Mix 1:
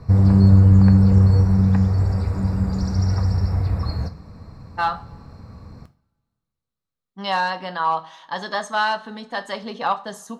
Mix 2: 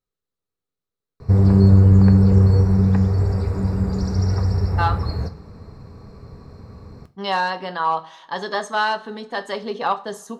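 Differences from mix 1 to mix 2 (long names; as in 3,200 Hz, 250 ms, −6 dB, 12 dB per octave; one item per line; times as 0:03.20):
background: entry +1.20 s
master: add parametric band 410 Hz +9.5 dB 0.36 octaves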